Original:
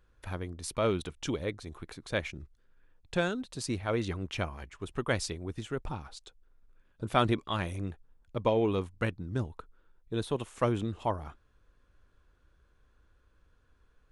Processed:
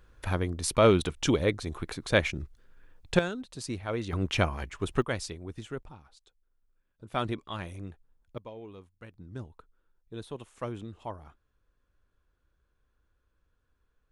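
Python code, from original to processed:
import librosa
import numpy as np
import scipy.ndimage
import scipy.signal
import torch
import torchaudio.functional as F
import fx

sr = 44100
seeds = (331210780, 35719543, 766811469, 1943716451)

y = fx.gain(x, sr, db=fx.steps((0.0, 8.0), (3.19, -2.0), (4.13, 7.5), (5.02, -2.5), (5.83, -11.5), (7.14, -5.0), (8.38, -17.5), (9.14, -8.0)))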